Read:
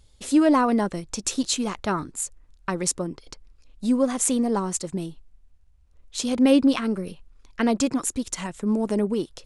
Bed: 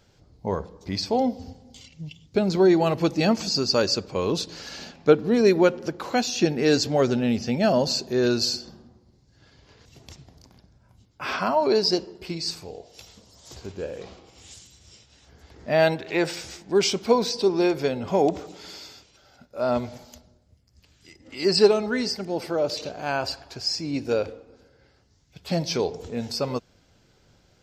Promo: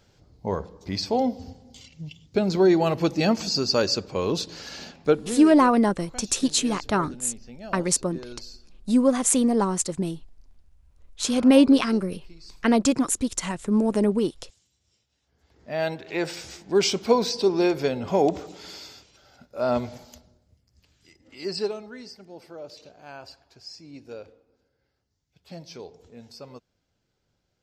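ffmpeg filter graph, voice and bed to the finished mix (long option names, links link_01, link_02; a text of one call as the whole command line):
ffmpeg -i stem1.wav -i stem2.wav -filter_complex "[0:a]adelay=5050,volume=2dB[link_01];[1:a]volume=18.5dB,afade=type=out:start_time=4.92:duration=0.57:silence=0.11885,afade=type=in:start_time=15.29:duration=1.49:silence=0.112202,afade=type=out:start_time=19.86:duration=2.06:silence=0.16788[link_02];[link_01][link_02]amix=inputs=2:normalize=0" out.wav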